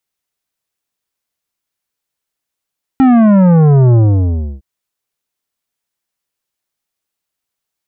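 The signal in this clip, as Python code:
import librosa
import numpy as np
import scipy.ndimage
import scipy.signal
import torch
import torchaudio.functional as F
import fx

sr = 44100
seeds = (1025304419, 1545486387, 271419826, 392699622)

y = fx.sub_drop(sr, level_db=-6, start_hz=270.0, length_s=1.61, drive_db=11.5, fade_s=0.66, end_hz=65.0)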